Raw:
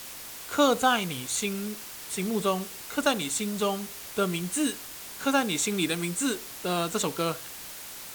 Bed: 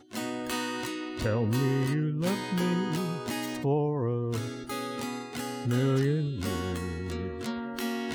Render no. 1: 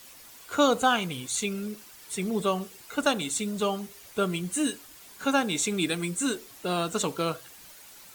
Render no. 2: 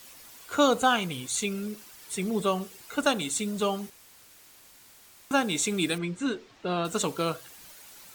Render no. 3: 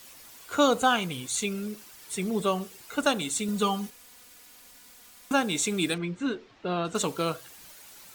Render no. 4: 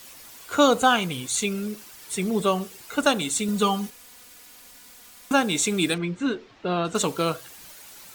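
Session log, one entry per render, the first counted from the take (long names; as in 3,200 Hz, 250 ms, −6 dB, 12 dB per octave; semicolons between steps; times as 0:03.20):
broadband denoise 10 dB, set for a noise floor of −42 dBFS
0:03.90–0:05.31: fill with room tone; 0:05.98–0:06.85: high-frequency loss of the air 170 metres
0:03.48–0:05.33: comb filter 4.1 ms, depth 75%; 0:05.94–0:06.95: high-frequency loss of the air 95 metres
level +4 dB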